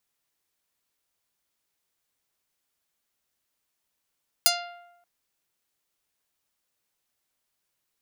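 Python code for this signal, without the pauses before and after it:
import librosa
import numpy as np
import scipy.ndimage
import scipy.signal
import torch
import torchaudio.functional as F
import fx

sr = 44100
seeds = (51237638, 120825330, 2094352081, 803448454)

y = fx.pluck(sr, length_s=0.58, note=77, decay_s=0.95, pick=0.37, brightness='medium')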